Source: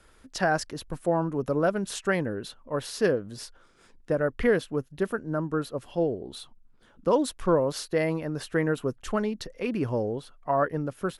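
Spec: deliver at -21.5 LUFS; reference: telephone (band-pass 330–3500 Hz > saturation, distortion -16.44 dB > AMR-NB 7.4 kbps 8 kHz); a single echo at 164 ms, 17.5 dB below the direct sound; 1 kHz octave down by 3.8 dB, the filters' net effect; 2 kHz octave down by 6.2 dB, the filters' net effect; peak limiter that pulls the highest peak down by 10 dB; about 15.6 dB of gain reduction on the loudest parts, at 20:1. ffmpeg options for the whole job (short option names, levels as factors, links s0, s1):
-af "equalizer=f=1000:t=o:g=-3.5,equalizer=f=2000:t=o:g=-6.5,acompressor=threshold=0.02:ratio=20,alimiter=level_in=2.82:limit=0.0631:level=0:latency=1,volume=0.355,highpass=330,lowpass=3500,aecho=1:1:164:0.133,asoftclip=threshold=0.0119,volume=23.7" -ar 8000 -c:a libopencore_amrnb -b:a 7400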